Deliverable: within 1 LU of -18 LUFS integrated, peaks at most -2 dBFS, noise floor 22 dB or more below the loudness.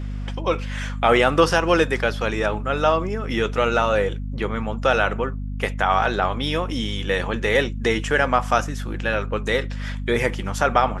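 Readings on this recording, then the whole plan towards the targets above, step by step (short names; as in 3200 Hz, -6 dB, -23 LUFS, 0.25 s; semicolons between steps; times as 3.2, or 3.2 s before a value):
hum 50 Hz; harmonics up to 250 Hz; hum level -26 dBFS; loudness -22.0 LUFS; peak -3.0 dBFS; loudness target -18.0 LUFS
-> de-hum 50 Hz, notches 5; gain +4 dB; limiter -2 dBFS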